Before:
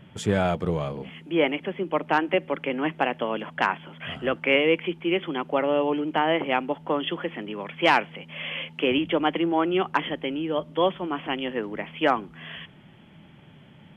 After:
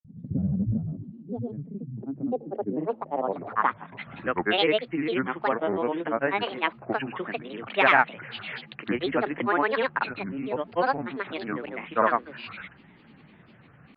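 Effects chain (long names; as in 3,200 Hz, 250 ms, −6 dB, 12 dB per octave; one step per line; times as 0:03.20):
low-pass filter sweep 170 Hz → 1,800 Hz, 0:01.79–0:04.17
granular cloud, pitch spread up and down by 7 semitones
level −2.5 dB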